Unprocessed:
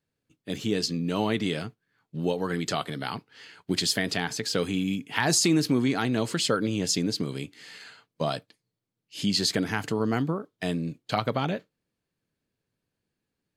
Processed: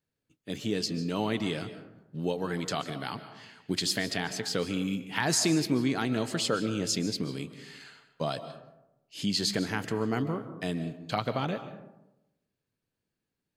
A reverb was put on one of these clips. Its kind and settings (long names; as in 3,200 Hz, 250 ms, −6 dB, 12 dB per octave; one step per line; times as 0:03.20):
comb and all-pass reverb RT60 0.95 s, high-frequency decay 0.4×, pre-delay 105 ms, DRR 11 dB
level −3.5 dB